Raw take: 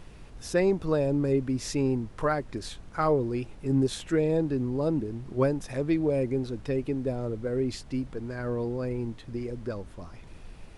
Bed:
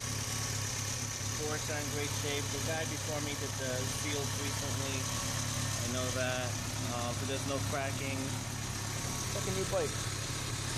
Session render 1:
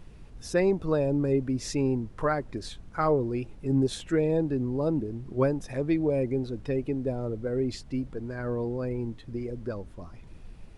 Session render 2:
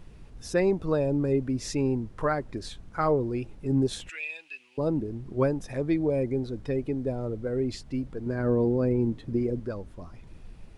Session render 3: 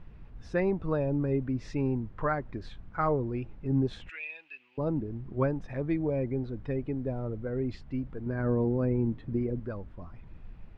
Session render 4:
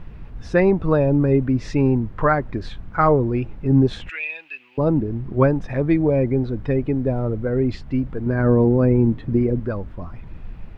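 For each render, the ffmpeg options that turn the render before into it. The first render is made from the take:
ffmpeg -i in.wav -af "afftdn=noise_reduction=6:noise_floor=-47" out.wav
ffmpeg -i in.wav -filter_complex "[0:a]asettb=1/sr,asplit=3[link_01][link_02][link_03];[link_01]atrim=end=4.094[link_04];[link_02]atrim=start=4.09:end=4.78,asetpts=PTS-STARTPTS,afade=type=in:duration=0.004:curve=qsin,afade=type=out:start_time=0.686:duration=0.004:curve=qsin,highpass=frequency=2600:width_type=q:width=10[link_05];[link_03]atrim=start=4.776[link_06];[link_04][link_05]acrossfade=duration=0.004:curve1=hsin:curve2=qsin[link_07];[link_07][link_06]acrossfade=duration=0.004:curve1=qsin:curve2=hsin,asettb=1/sr,asplit=3[link_08][link_09][link_10];[link_08]atrim=end=5.824[link_11];[link_09]atrim=start=5.82:end=7.09,asetpts=PTS-STARTPTS,afade=type=in:duration=0.004:curve=qsin,afade=type=out:start_time=1.266:duration=0.004:curve=qsin,bandreject=frequency=2700:width=12[link_12];[link_10]atrim=start=7.086[link_13];[link_11][link_12]acrossfade=duration=0.004:curve1=hsin:curve2=qsin[link_14];[link_14][link_13]acrossfade=duration=0.004:curve1=qsin:curve2=hsin,asettb=1/sr,asplit=3[link_15][link_16][link_17];[link_15]atrim=end=8.264[link_18];[link_16]atrim=start=8.26:end=9.6,asetpts=PTS-STARTPTS,afade=type=in:duration=0.004:curve=qsin,afade=type=out:start_time=1.336:duration=0.004:curve=qsin,equalizer=frequency=250:width=0.43:gain=8[link_19];[link_17]atrim=start=9.596[link_20];[link_18][link_19]acrossfade=duration=0.004:curve1=hsin:curve2=qsin[link_21];[link_21][link_20]acrossfade=duration=0.004:curve1=qsin:curve2=hsin" out.wav
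ffmpeg -i in.wav -af "lowpass=2200,equalizer=frequency=420:width_type=o:width=1.6:gain=-5" out.wav
ffmpeg -i in.wav -af "volume=11.5dB" out.wav

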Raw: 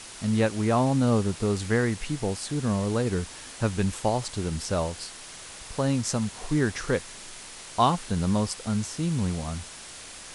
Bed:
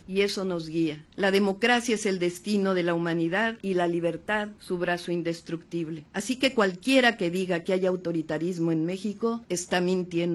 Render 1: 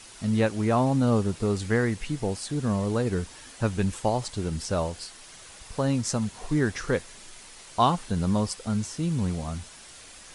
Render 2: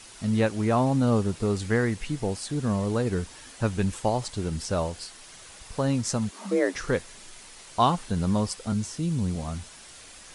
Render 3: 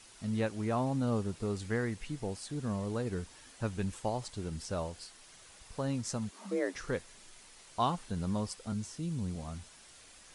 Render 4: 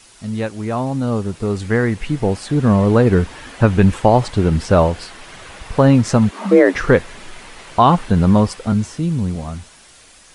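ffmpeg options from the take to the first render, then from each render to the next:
ffmpeg -i in.wav -af "afftdn=noise_reduction=6:noise_floor=-43" out.wav
ffmpeg -i in.wav -filter_complex "[0:a]asettb=1/sr,asplit=3[link_01][link_02][link_03];[link_01]atrim=end=6.314[link_04];[link_02]atrim=start=6.31:end=6.75,asetpts=PTS-STARTPTS,afade=type=in:duration=0.004:curve=qsin,afade=type=out:start_time=0.436:duration=0.004:curve=qsin,afreqshift=180[link_05];[link_03]atrim=start=6.746[link_06];[link_04][link_05]acrossfade=duration=0.004:curve1=hsin:curve2=qsin[link_07];[link_07][link_06]acrossfade=duration=0.004:curve1=qsin:curve2=hsin,asettb=1/sr,asplit=3[link_08][link_09][link_10];[link_08]atrim=end=8.724[link_11];[link_09]atrim=start=8.72:end=9.36,asetpts=PTS-STARTPTS,afade=type=in:duration=0.004:curve=qsin,afade=type=out:start_time=0.636:duration=0.004:curve=qsin,acrossover=split=440|3000[link_12][link_13][link_14];[link_13]acompressor=threshold=-49dB:ratio=2:attack=3.2:release=140:knee=2.83:detection=peak[link_15];[link_12][link_15][link_14]amix=inputs=3:normalize=0[link_16];[link_10]atrim=start=9.356[link_17];[link_11][link_16]acrossfade=duration=0.004:curve1=hsin:curve2=qsin[link_18];[link_18][link_17]acrossfade=duration=0.004:curve1=qsin:curve2=hsin" out.wav
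ffmpeg -i in.wav -af "volume=-9dB" out.wav
ffmpeg -i in.wav -filter_complex "[0:a]acrossover=split=3100[link_01][link_02];[link_01]dynaudnorm=framelen=610:gausssize=7:maxgain=14dB[link_03];[link_03][link_02]amix=inputs=2:normalize=0,alimiter=level_in=9.5dB:limit=-1dB:release=50:level=0:latency=1" out.wav

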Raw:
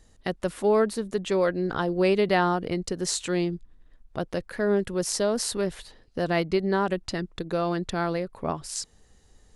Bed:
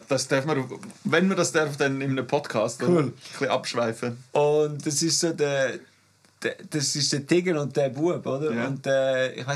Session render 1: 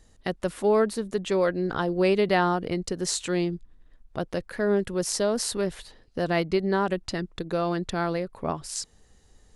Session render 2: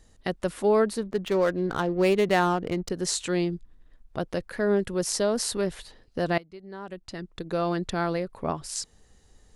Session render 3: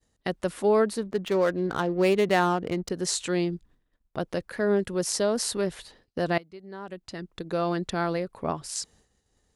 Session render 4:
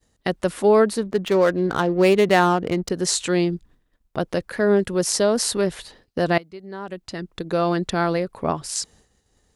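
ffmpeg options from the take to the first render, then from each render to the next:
ffmpeg -i in.wav -af anull out.wav
ffmpeg -i in.wav -filter_complex "[0:a]asettb=1/sr,asplit=3[link_01][link_02][link_03];[link_01]atrim=end=1.034[link_04];[link_02]atrim=start=1.03:end=2.9,asetpts=PTS-STARTPTS,afade=type=in:duration=0.004:curve=qsin,afade=type=out:start_time=1.866:duration=0.004:curve=qsin,adynamicsmooth=sensitivity=7:basefreq=1200[link_05];[link_03]atrim=start=2.896[link_06];[link_04][link_05]acrossfade=duration=0.004:curve1=hsin:curve2=qsin[link_07];[link_07][link_06]acrossfade=duration=0.004:curve1=qsin:curve2=hsin,asplit=2[link_08][link_09];[link_08]atrim=end=6.38,asetpts=PTS-STARTPTS,afade=type=out:start_time=6.376:duration=0.004:curve=hsin:silence=0.0794328[link_10];[link_09]atrim=start=6.38,asetpts=PTS-STARTPTS,afade=type=in:duration=1.24:curve=qua:silence=0.0794328[link_11];[link_10][link_11]concat=n=2:v=0:a=1" out.wav
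ffmpeg -i in.wav -af "highpass=frequency=72:poles=1,agate=range=-33dB:threshold=-53dB:ratio=3:detection=peak" out.wav
ffmpeg -i in.wav -af "volume=6dB" out.wav

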